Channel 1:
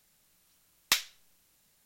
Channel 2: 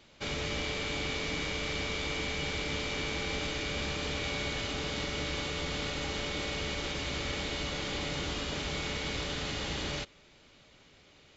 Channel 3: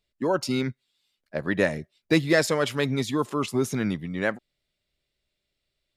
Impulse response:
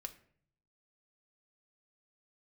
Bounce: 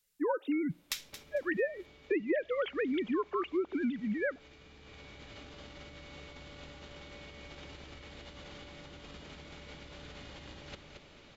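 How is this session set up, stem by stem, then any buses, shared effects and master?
−11.0 dB, 0.00 s, send −7 dB, echo send −11.5 dB, parametric band 450 Hz −14 dB 2.5 octaves
−6.0 dB, 0.70 s, no send, echo send −6.5 dB, high-shelf EQ 4,400 Hz −8.5 dB; compressor whose output falls as the input rises −42 dBFS, ratio −0.5; automatic ducking −20 dB, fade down 1.30 s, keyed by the third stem
−2.0 dB, 0.00 s, send −17.5 dB, no echo send, three sine waves on the formant tracks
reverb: on, RT60 0.55 s, pre-delay 4 ms
echo: repeating echo 224 ms, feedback 25%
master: downward compressor 5 to 1, threshold −29 dBFS, peak gain reduction 12.5 dB

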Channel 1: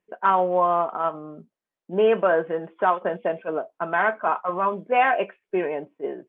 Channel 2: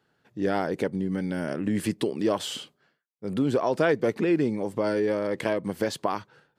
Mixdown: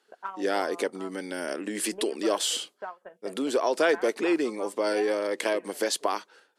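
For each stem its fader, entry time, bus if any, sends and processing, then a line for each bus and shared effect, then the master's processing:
−16.5 dB, 0.00 s, no send, low-shelf EQ 350 Hz −8.5 dB; transient designer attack +10 dB, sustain −4 dB; automatic ducking −6 dB, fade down 0.20 s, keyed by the second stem
−0.5 dB, 0.00 s, no send, high-pass filter 300 Hz 24 dB per octave; parametric band 11,000 Hz +11 dB 2.5 octaves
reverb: not used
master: low-pass filter 12,000 Hz 24 dB per octave

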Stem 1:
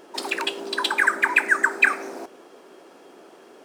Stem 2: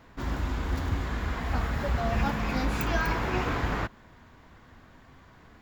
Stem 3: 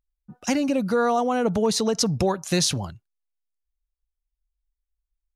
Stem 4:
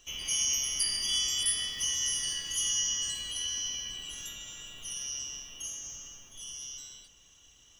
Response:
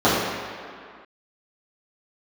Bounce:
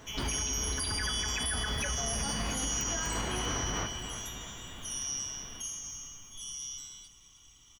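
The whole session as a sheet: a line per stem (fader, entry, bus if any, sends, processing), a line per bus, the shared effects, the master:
−10.5 dB, 0.00 s, no send, no echo send, Butterworth low-pass 6,500 Hz; phases set to zero 213 Hz
+2.0 dB, 0.00 s, no send, echo send −12.5 dB, downward compressor, threshold −31 dBFS, peak gain reduction 9.5 dB
muted
−0.5 dB, 0.00 s, no send, echo send −18.5 dB, comb filter 0.9 ms, depth 55%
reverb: not used
echo: repeating echo 320 ms, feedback 55%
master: brickwall limiter −23.5 dBFS, peak gain reduction 10 dB

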